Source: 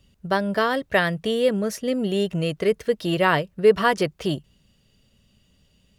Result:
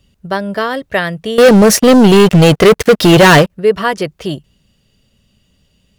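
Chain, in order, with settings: 1.38–3.50 s: waveshaping leveller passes 5; trim +4.5 dB

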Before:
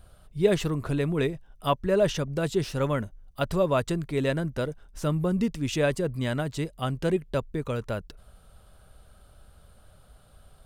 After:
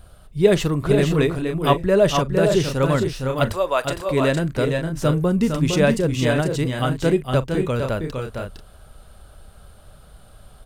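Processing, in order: 3.52–4.09 s: high-pass 620 Hz 12 dB/octave; multi-tap echo 41/459/490 ms -17.5/-5.5/-9 dB; trim +6.5 dB

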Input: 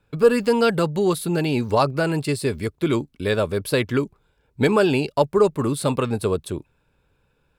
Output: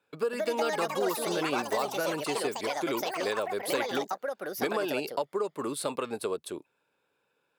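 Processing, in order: high-pass 360 Hz 12 dB/octave; compression 5:1, threshold -22 dBFS, peak gain reduction 10.5 dB; ever faster or slower copies 232 ms, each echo +5 st, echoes 3; trim -5 dB

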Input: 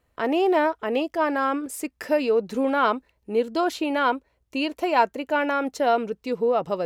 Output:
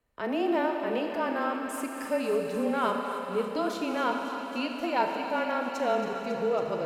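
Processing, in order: thinning echo 275 ms, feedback 83%, high-pass 420 Hz, level -11 dB; Schroeder reverb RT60 3.4 s, combs from 30 ms, DRR 3 dB; frequency shift -23 Hz; trim -7.5 dB

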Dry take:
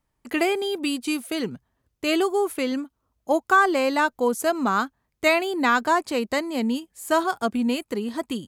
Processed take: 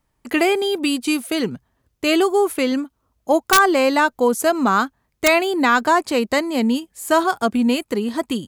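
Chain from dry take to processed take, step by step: in parallel at -0.5 dB: peak limiter -14.5 dBFS, peak gain reduction 8 dB; on the sum: integer overflow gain 5 dB

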